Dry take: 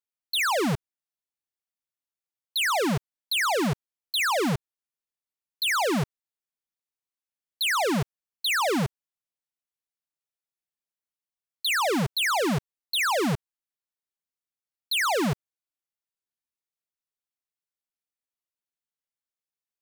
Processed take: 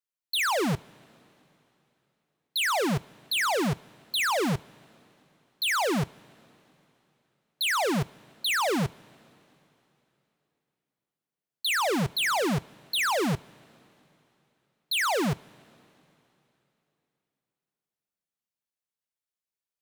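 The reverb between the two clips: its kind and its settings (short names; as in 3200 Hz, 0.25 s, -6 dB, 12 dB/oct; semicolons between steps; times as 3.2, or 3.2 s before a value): two-slope reverb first 0.22 s, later 3.3 s, from -18 dB, DRR 18.5 dB; gain -1.5 dB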